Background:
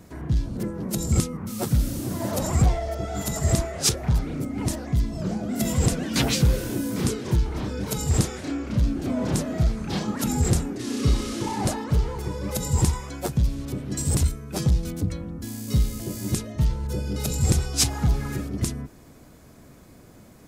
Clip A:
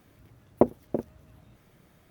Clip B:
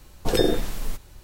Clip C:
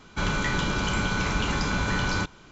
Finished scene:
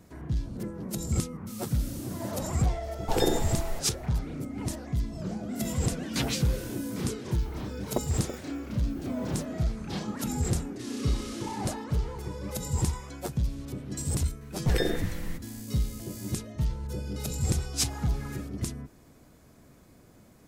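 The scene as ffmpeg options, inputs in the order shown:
-filter_complex "[2:a]asplit=2[a][b];[0:a]volume=-6.5dB[c];[a]equalizer=f=850:w=5.1:g=13.5[d];[1:a]crystalizer=i=5.5:c=0[e];[b]equalizer=f=1.9k:w=3.1:g=12[f];[d]atrim=end=1.23,asetpts=PTS-STARTPTS,volume=-5.5dB,afade=t=in:d=0.004:c=hsin,afade=t=out:st=1.226:d=0.004:c=hsin,adelay=2830[g];[e]atrim=end=2.1,asetpts=PTS-STARTPTS,volume=-11dB,afade=t=in:d=0.004:c=hsin,afade=t=out:st=2.096:d=0.004:c=hsin,adelay=7350[h];[f]atrim=end=1.23,asetpts=PTS-STARTPTS,volume=-8dB,afade=t=in:d=0.004:c=hsin,afade=t=out:st=1.226:d=0.004:c=hsin,adelay=14410[i];[c][g][h][i]amix=inputs=4:normalize=0"

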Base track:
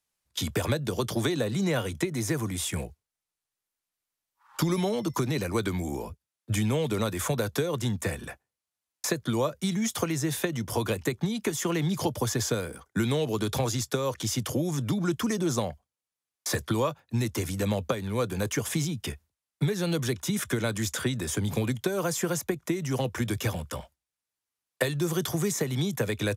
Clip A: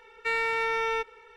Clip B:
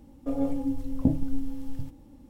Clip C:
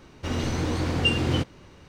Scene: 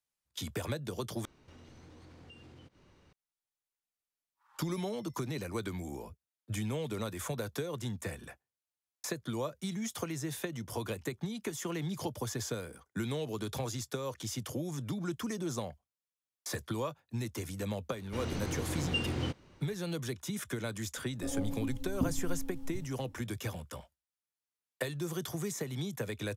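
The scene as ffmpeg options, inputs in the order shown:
-filter_complex "[3:a]asplit=2[a][b];[0:a]volume=-9dB[c];[a]acompressor=threshold=-39dB:ratio=6:attack=3.2:release=140:knee=1:detection=peak[d];[c]asplit=2[e][f];[e]atrim=end=1.254[g];[d]atrim=end=1.88,asetpts=PTS-STARTPTS,volume=-13.5dB[h];[f]atrim=start=3.126[i];[b]atrim=end=1.88,asetpts=PTS-STARTPTS,volume=-10dB,afade=t=in:d=0.004:c=hsin,afade=t=out:st=1.876:d=0.004:c=hsin,adelay=17890[j];[2:a]atrim=end=2.29,asetpts=PTS-STARTPTS,volume=-8.5dB,afade=t=in:d=0.004:c=hsin,afade=t=out:st=2.286:d=0.004:c=hsin,adelay=20960[k];[g][h]acrossfade=d=0.004:c1=hsin:c2=hsin[l];[l][i]acrossfade=d=0.004:c1=hsin:c2=hsin[m];[m][j][k]amix=inputs=3:normalize=0"

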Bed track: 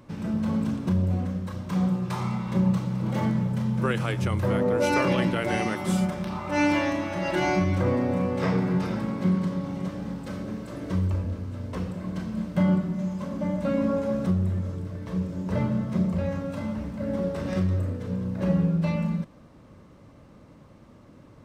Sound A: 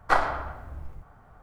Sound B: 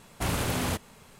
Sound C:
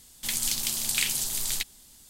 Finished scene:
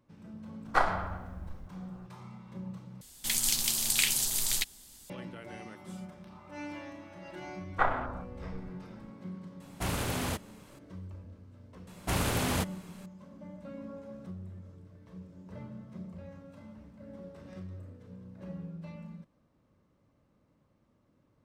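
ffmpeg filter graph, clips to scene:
-filter_complex "[1:a]asplit=2[a][b];[2:a]asplit=2[c][d];[0:a]volume=-19dB[e];[b]afwtdn=0.0126[f];[e]asplit=2[g][h];[g]atrim=end=3.014[i];[3:a]atrim=end=2.09,asetpts=PTS-STARTPTS,volume=-0.5dB[j];[h]atrim=start=5.096[k];[a]atrim=end=1.42,asetpts=PTS-STARTPTS,volume=-4dB,afade=t=in:d=0.004:c=hsin,afade=t=out:st=1.416:d=0.004:c=hsin,adelay=650[l];[f]atrim=end=1.42,asetpts=PTS-STARTPTS,volume=-5.5dB,afade=t=in:d=0.004:c=hsin,afade=t=out:st=1.416:d=0.004:c=hsin,adelay=7690[m];[c]atrim=end=1.19,asetpts=PTS-STARTPTS,volume=-4dB,afade=t=in:d=0.004:c=hsin,afade=t=out:st=1.186:d=0.004:c=hsin,adelay=9600[n];[d]atrim=end=1.19,asetpts=PTS-STARTPTS,volume=-1dB,afade=t=in:d=0.004:c=hsin,afade=t=out:st=1.186:d=0.004:c=hsin,adelay=11870[o];[i][j]acrossfade=d=0.004:c1=hsin:c2=hsin[p];[p][k]acrossfade=d=0.004:c1=hsin:c2=hsin[q];[q][l][m][n][o]amix=inputs=5:normalize=0"

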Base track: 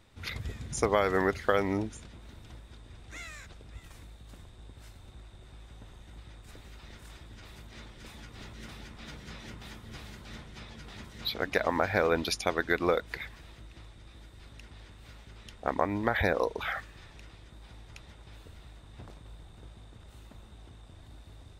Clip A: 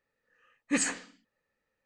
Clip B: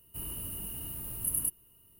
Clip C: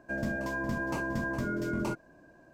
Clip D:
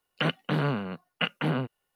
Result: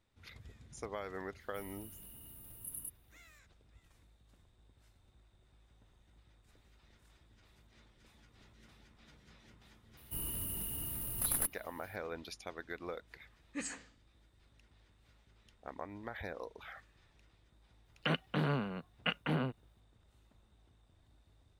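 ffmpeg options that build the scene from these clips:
-filter_complex "[2:a]asplit=2[a][b];[0:a]volume=-16.5dB[c];[b]aeval=exprs='clip(val(0),-1,0.0211)':c=same[d];[a]atrim=end=1.99,asetpts=PTS-STARTPTS,volume=-14dB,afade=t=in:d=0.004:c=hsin,afade=t=out:st=1.986:d=0.004:c=hsin,adelay=1400[e];[d]atrim=end=1.99,asetpts=PTS-STARTPTS,volume=-0.5dB,afade=t=in:d=0.004:c=hsin,afade=t=out:st=1.986:d=0.004:c=hsin,adelay=9970[f];[1:a]atrim=end=1.85,asetpts=PTS-STARTPTS,volume=-13.5dB,afade=t=in:d=0.004:c=hsin,afade=t=out:st=1.846:d=0.004:c=hsin,adelay=566244S[g];[4:a]atrim=end=1.95,asetpts=PTS-STARTPTS,volume=-6.5dB,afade=t=in:d=0.004:c=hsin,afade=t=out:st=1.946:d=0.004:c=hsin,adelay=17850[h];[c][e][f][g][h]amix=inputs=5:normalize=0"

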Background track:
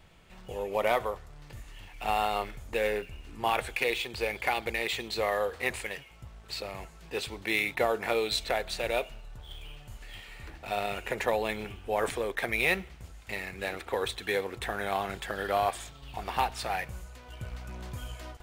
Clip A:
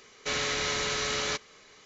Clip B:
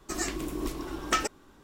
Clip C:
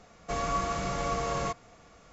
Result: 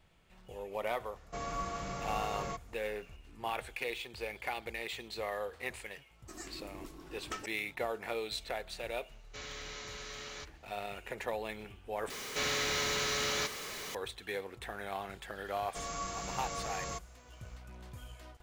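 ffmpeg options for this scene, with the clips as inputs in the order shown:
-filter_complex "[3:a]asplit=2[a][b];[1:a]asplit=2[c][d];[0:a]volume=-9dB[e];[d]aeval=exprs='val(0)+0.5*0.0251*sgn(val(0))':c=same[f];[b]aemphasis=mode=production:type=75fm[g];[e]asplit=2[h][i];[h]atrim=end=12.104[j];[f]atrim=end=1.85,asetpts=PTS-STARTPTS,volume=-5.5dB[k];[i]atrim=start=13.946[l];[a]atrim=end=2.12,asetpts=PTS-STARTPTS,volume=-8dB,afade=t=in:d=0.004:c=hsin,afade=t=out:st=2.116:d=0.004:c=hsin,adelay=1040[m];[2:a]atrim=end=1.63,asetpts=PTS-STARTPTS,volume=-15dB,afade=t=in:d=0.004:c=hsin,afade=t=out:st=1.626:d=0.004:c=hsin,adelay=6190[n];[c]atrim=end=1.85,asetpts=PTS-STARTPTS,volume=-15.5dB,afade=t=in:d=0.004:c=hsin,afade=t=out:st=1.846:d=0.004:c=hsin,adelay=9080[o];[g]atrim=end=2.12,asetpts=PTS-STARTPTS,volume=-10dB,afade=t=in:d=0.004:c=hsin,afade=t=out:st=2.116:d=0.004:c=hsin,adelay=15460[p];[j][k]acrossfade=d=0.004:c1=hsin:c2=hsin[q];[q][l]acrossfade=d=0.004:c1=hsin:c2=hsin[r];[r][m][n][o][p]amix=inputs=5:normalize=0"

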